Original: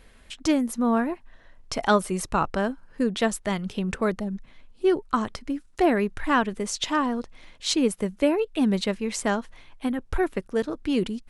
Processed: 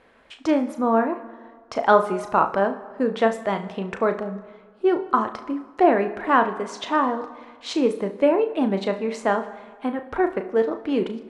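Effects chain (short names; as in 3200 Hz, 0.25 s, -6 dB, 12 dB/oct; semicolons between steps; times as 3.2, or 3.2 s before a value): band-pass 750 Hz, Q 0.77; on a send: flutter echo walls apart 6.1 m, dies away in 0.22 s; on the sum: plate-style reverb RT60 1.6 s, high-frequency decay 0.65×, DRR 12.5 dB; gain +6 dB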